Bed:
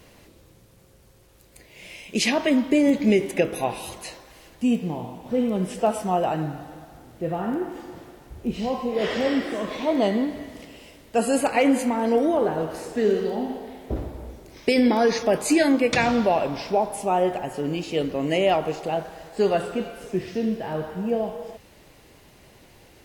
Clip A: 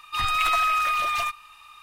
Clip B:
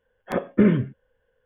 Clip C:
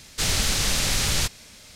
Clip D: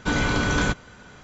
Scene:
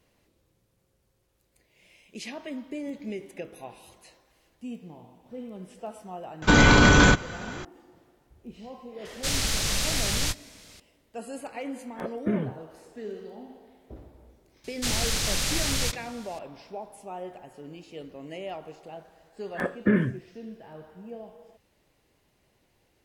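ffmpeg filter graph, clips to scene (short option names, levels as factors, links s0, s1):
-filter_complex "[3:a]asplit=2[s0][s1];[2:a]asplit=2[s2][s3];[0:a]volume=0.15[s4];[4:a]alimiter=level_in=5.31:limit=0.891:release=50:level=0:latency=1[s5];[s0]asplit=2[s6][s7];[s7]adelay=20,volume=0.237[s8];[s6][s8]amix=inputs=2:normalize=0[s9];[s3]equalizer=f=1700:w=5.8:g=13[s10];[s5]atrim=end=1.23,asetpts=PTS-STARTPTS,volume=0.531,afade=t=in:d=0.004:c=hsin,afade=t=out:st=1.226:d=0.004:c=hsin,adelay=283122S[s11];[s9]atrim=end=1.75,asetpts=PTS-STARTPTS,volume=0.631,afade=t=in:d=0.004:c=hsin,afade=t=out:st=1.746:d=0.004:c=hsin,adelay=9050[s12];[s2]atrim=end=1.45,asetpts=PTS-STARTPTS,volume=0.316,afade=t=in:d=0.004:c=hsin,afade=t=out:st=1.446:d=0.004:c=hsin,adelay=11680[s13];[s1]atrim=end=1.75,asetpts=PTS-STARTPTS,volume=0.631,afade=t=in:d=0.004:c=hsin,afade=t=out:st=1.746:d=0.004:c=hsin,adelay=14640[s14];[s10]atrim=end=1.45,asetpts=PTS-STARTPTS,volume=0.562,afade=t=in:d=0.004:c=hsin,afade=t=out:st=1.446:d=0.004:c=hsin,adelay=19280[s15];[s4][s11][s12][s13][s14][s15]amix=inputs=6:normalize=0"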